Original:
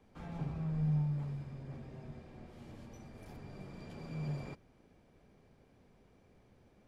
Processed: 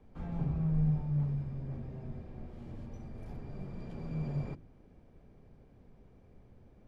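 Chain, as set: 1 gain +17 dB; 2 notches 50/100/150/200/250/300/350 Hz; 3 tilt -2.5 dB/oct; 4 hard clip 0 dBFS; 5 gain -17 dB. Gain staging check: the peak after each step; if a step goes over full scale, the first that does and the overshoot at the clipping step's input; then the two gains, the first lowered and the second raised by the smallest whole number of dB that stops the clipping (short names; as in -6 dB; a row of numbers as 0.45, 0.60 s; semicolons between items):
-8.0, -11.0, -3.5, -3.5, -20.5 dBFS; no overload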